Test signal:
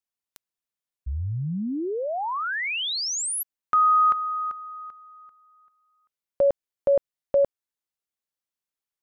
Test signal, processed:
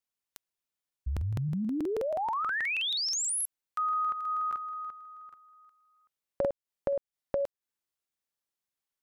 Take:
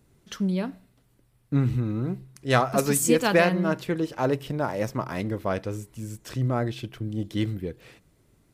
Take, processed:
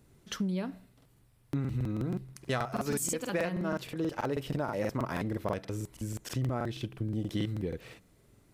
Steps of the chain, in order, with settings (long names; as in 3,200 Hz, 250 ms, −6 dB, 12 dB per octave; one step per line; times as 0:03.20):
downward compressor 6 to 1, threshold −29 dBFS
regular buffer underruns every 0.16 s, samples 2,048, repeat, from 0:00.96